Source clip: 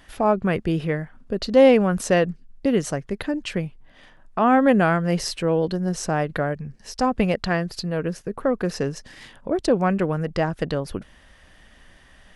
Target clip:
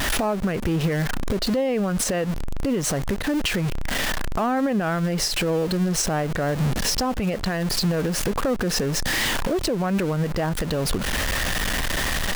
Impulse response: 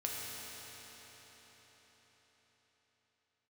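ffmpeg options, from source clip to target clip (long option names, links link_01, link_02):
-af "aeval=exprs='val(0)+0.5*0.0501*sgn(val(0))':channel_layout=same,acompressor=threshold=-25dB:ratio=2.5,alimiter=limit=-23dB:level=0:latency=1:release=105,volume=7.5dB"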